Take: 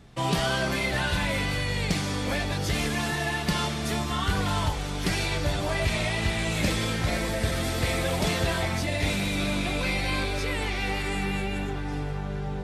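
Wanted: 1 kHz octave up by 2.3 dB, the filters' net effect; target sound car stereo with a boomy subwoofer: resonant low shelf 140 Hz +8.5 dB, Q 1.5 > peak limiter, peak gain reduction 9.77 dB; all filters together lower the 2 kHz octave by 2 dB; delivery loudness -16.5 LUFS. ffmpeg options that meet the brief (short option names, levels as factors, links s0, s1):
-af "lowshelf=f=140:t=q:w=1.5:g=8.5,equalizer=f=1000:t=o:g=4,equalizer=f=2000:t=o:g=-3.5,volume=2.82,alimiter=limit=0.473:level=0:latency=1"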